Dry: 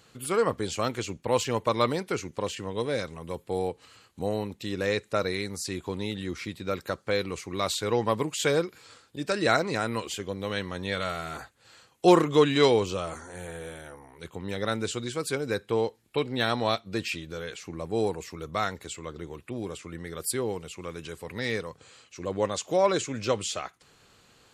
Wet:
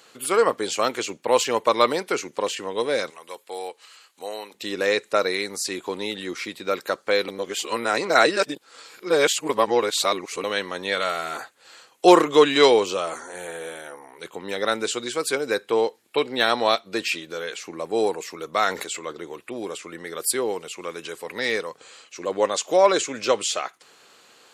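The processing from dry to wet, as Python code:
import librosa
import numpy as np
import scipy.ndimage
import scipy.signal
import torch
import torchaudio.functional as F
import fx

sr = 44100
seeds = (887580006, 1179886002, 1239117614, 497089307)

y = fx.highpass(x, sr, hz=1400.0, slope=6, at=(3.1, 4.54))
y = fx.sustainer(y, sr, db_per_s=64.0, at=(18.52, 19.11), fade=0.02)
y = fx.edit(y, sr, fx.reverse_span(start_s=7.28, length_s=3.16), tone=tone)
y = scipy.signal.sosfilt(scipy.signal.butter(2, 360.0, 'highpass', fs=sr, output='sos'), y)
y = y * librosa.db_to_amplitude(7.0)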